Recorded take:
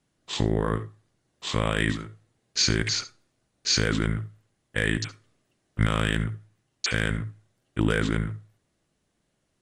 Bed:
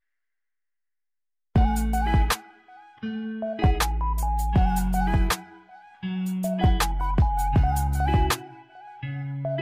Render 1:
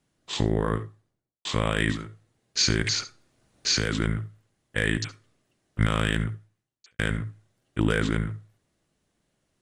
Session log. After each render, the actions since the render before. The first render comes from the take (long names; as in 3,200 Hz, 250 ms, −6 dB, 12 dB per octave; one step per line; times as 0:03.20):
0:00.78–0:01.45: fade out and dull
0:02.84–0:04.00: multiband upward and downward compressor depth 40%
0:06.31–0:06.99: fade out quadratic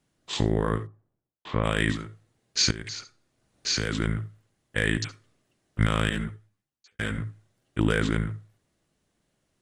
0:00.86–0:01.63: low-pass filter 1,100 Hz → 1,900 Hz
0:02.71–0:04.25: fade in linear, from −14 dB
0:06.09–0:07.18: string-ensemble chorus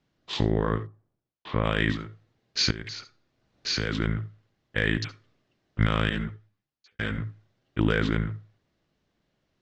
low-pass filter 5,300 Hz 24 dB per octave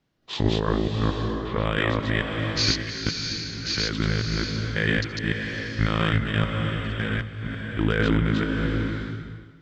delay that plays each chunk backwards 222 ms, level 0 dB
slow-attack reverb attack 650 ms, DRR 4 dB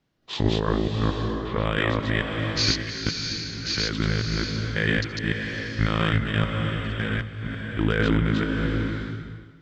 no processing that can be heard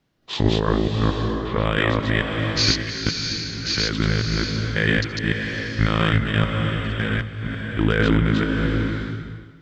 level +3.5 dB